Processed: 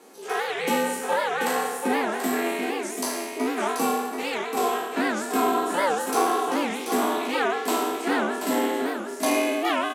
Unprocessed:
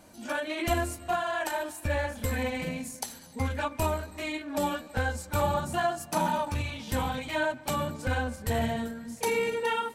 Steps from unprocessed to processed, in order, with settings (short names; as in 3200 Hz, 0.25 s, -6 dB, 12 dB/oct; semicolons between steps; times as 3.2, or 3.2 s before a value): spectral trails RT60 1.11 s; low shelf 400 Hz +4.5 dB; in parallel at -4.5 dB: overloaded stage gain 17.5 dB; on the sum: ring modulator 170 Hz; steep high-pass 210 Hz 48 dB/oct; echo 0.734 s -6.5 dB; record warp 78 rpm, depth 250 cents